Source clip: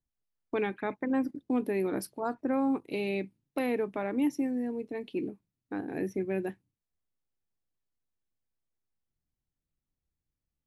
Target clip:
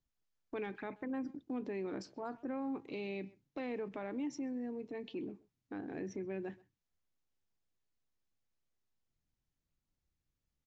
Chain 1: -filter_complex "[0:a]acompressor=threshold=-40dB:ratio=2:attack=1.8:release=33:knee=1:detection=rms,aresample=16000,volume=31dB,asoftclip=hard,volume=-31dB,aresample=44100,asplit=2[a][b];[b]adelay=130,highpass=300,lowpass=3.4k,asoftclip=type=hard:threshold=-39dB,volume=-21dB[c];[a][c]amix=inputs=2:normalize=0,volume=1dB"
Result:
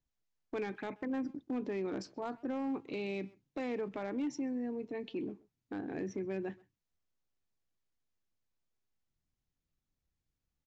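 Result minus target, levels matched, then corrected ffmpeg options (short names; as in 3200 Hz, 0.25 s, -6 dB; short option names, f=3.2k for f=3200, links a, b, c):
compressor: peak gain reduction -3 dB
-filter_complex "[0:a]acompressor=threshold=-46.5dB:ratio=2:attack=1.8:release=33:knee=1:detection=rms,aresample=16000,volume=31dB,asoftclip=hard,volume=-31dB,aresample=44100,asplit=2[a][b];[b]adelay=130,highpass=300,lowpass=3.4k,asoftclip=type=hard:threshold=-39dB,volume=-21dB[c];[a][c]amix=inputs=2:normalize=0,volume=1dB"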